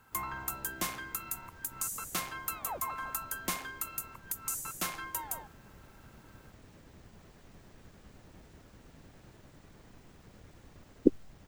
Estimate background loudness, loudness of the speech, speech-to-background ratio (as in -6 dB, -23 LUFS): -36.5 LUFS, -30.5 LUFS, 6.0 dB